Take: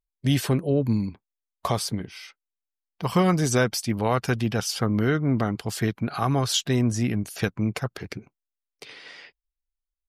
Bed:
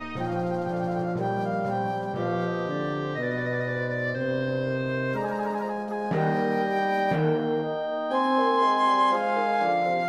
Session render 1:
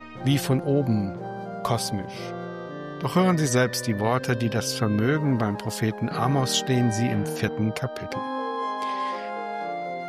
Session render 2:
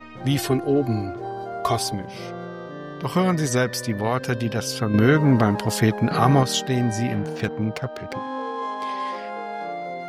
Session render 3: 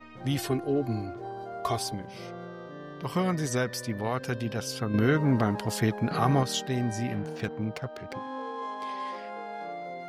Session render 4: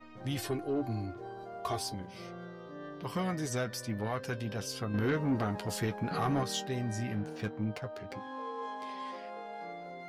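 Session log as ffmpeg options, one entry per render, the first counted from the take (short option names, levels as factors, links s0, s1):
-filter_complex "[1:a]volume=0.447[s0];[0:a][s0]amix=inputs=2:normalize=0"
-filter_complex "[0:a]asettb=1/sr,asplit=3[s0][s1][s2];[s0]atrim=end=0.384[s3];[s1]atrim=start=0.38:end=1.94,asetpts=PTS-STARTPTS,afade=t=in:d=0.004:c=qsin,afade=t=out:st=1.556:d=0.004:c=qsin,aecho=1:1:2.8:0.9,atrim=end_sample=68796[s4];[s2]atrim=start=1.936[s5];[s3][s4]acrossfade=d=0.004:c1=hsin:c2=qsin[s6];[s6][s5]acrossfade=d=0.004:c1=qsin:c2=hsin,asettb=1/sr,asplit=3[s7][s8][s9];[s7]atrim=end=7.194[s10];[s8]atrim=start=7.19:end=8.84,asetpts=PTS-STARTPTS,afade=t=in:d=0.004:c=qsin,afade=t=out:st=1.646:d=0.004:c=qsin,adynamicsmooth=sensitivity=6.5:basefreq=2900[s11];[s9]atrim=start=8.836[s12];[s10][s11]acrossfade=d=0.004:c1=hsin:c2=qsin[s13];[s13][s12]acrossfade=d=0.004:c1=qsin:c2=hsin,asplit=3[s14][s15][s16];[s14]atrim=end=4.942[s17];[s15]atrim=start=4.938:end=6.432,asetpts=PTS-STARTPTS,volume=2[s18];[s16]atrim=start=6.428[s19];[s17][s18]acrossfade=d=0.004:c1=hsin:c2=hsin[s20];[s20][s19]acrossfade=d=0.004:c1=hsin:c2=hsin"
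-af "volume=0.447"
-af "flanger=delay=9.4:depth=1.8:regen=46:speed=0.27:shape=sinusoidal,asoftclip=type=tanh:threshold=0.0708"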